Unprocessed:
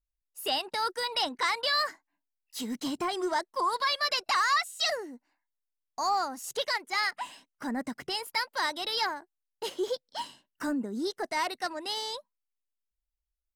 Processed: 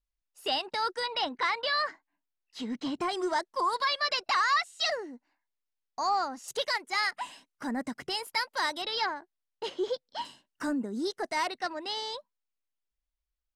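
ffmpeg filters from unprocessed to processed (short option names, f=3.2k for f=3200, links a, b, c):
-af "asetnsamples=n=441:p=0,asendcmd='1.06 lowpass f 3800;3.01 lowpass f 9300;3.85 lowpass f 5600;6.48 lowpass f 12000;8.82 lowpass f 4700;10.25 lowpass f 11000;11.48 lowpass f 5300',lowpass=6.5k"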